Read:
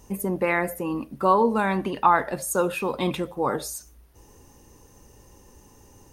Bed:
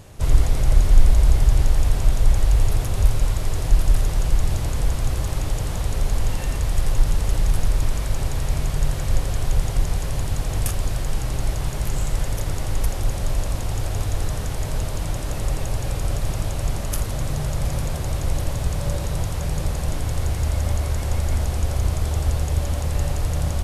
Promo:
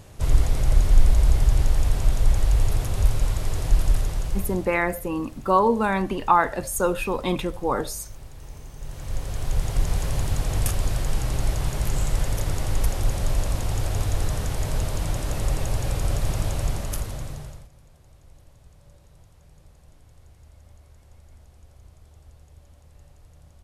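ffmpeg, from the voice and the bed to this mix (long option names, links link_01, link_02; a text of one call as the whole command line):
ffmpeg -i stem1.wav -i stem2.wav -filter_complex "[0:a]adelay=4250,volume=0.5dB[link_01];[1:a]volume=15.5dB,afade=type=out:start_time=3.85:duration=0.94:silence=0.158489,afade=type=in:start_time=8.77:duration=1.24:silence=0.125893,afade=type=out:start_time=16.54:duration=1.14:silence=0.0398107[link_02];[link_01][link_02]amix=inputs=2:normalize=0" out.wav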